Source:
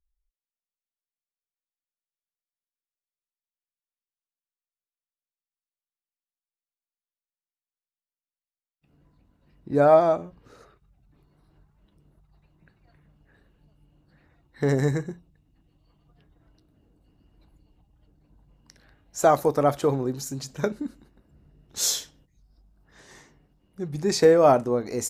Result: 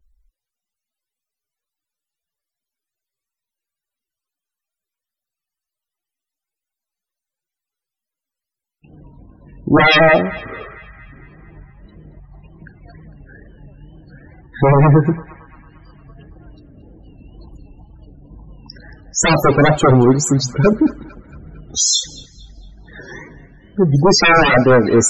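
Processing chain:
sine wavefolder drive 16 dB, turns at −5.5 dBFS
spectral peaks only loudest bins 32
tape wow and flutter 110 cents
feedback echo with a band-pass in the loop 227 ms, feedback 60%, band-pass 1,700 Hz, level −16 dB

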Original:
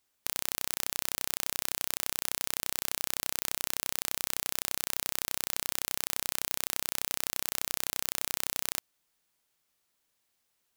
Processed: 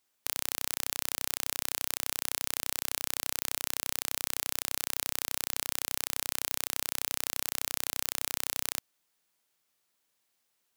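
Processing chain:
low-shelf EQ 79 Hz −11 dB

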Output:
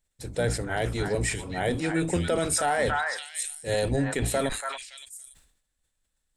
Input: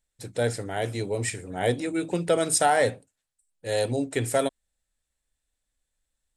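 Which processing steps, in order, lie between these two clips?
sub-octave generator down 1 octave, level −2 dB
echo through a band-pass that steps 283 ms, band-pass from 1,300 Hz, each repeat 1.4 octaves, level −2 dB
dynamic equaliser 1,600 Hz, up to +3 dB, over −35 dBFS, Q 0.92
brickwall limiter −16 dBFS, peak gain reduction 7.5 dB
level that may fall only so fast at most 80 dB per second

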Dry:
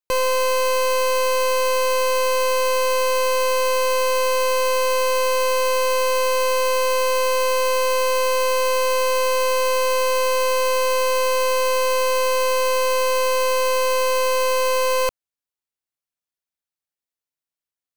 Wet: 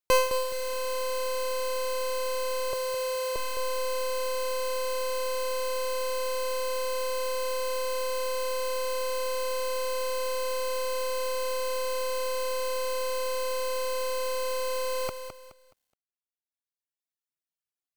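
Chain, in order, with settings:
reverb reduction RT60 1.1 s
0:02.73–0:03.36: Chebyshev high-pass filter 450 Hz, order 3
reverb reduction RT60 1.9 s
feedback echo at a low word length 211 ms, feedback 35%, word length 10 bits, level −8.5 dB

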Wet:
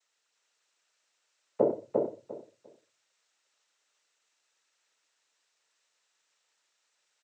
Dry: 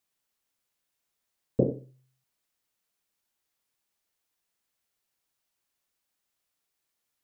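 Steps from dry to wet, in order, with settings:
high-pass filter 600 Hz 12 dB per octave
notch filter 840 Hz, Q 12
cochlear-implant simulation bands 12
on a send: repeating echo 349 ms, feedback 19%, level −3 dB
on the sum: level +8.5 dB

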